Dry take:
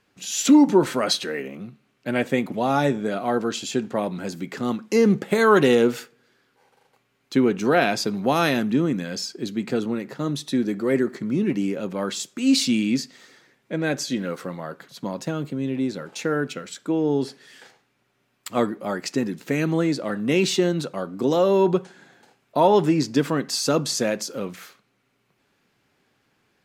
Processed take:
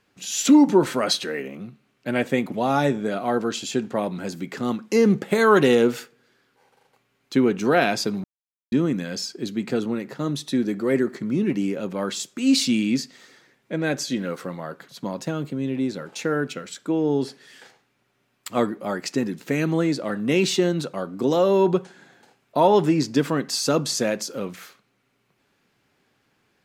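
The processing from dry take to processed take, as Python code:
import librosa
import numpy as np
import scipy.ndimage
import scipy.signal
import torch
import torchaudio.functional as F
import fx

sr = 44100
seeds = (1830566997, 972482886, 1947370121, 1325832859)

y = fx.edit(x, sr, fx.silence(start_s=8.24, length_s=0.48), tone=tone)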